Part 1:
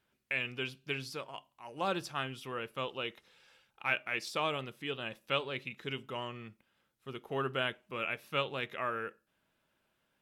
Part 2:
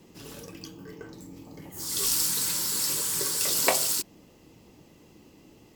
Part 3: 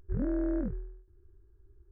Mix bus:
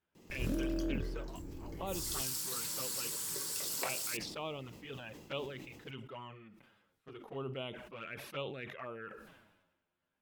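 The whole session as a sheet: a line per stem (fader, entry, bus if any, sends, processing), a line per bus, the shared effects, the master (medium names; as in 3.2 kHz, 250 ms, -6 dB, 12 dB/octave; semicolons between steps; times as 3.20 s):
-4.5 dB, 0.00 s, no send, treble shelf 3.4 kHz -9 dB; touch-sensitive flanger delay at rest 11.9 ms, full sweep at -32 dBFS
-6.0 dB, 0.15 s, no send, compression 3:1, threshold -31 dBFS, peak gain reduction 11 dB
-7.0 dB, 0.30 s, no send, spectral levelling over time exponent 0.4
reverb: none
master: decay stretcher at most 52 dB/s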